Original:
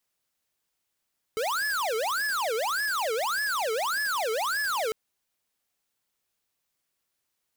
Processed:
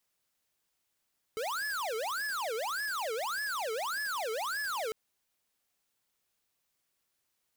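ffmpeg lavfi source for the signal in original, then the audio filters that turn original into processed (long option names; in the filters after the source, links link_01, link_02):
-f lavfi -i "aevalsrc='0.0398*(2*lt(mod((1076.5*t-643.5/(2*PI*1.7)*sin(2*PI*1.7*t)),1),0.5)-1)':duration=3.55:sample_rate=44100"
-af "alimiter=level_in=10.5dB:limit=-24dB:level=0:latency=1:release=56,volume=-10.5dB"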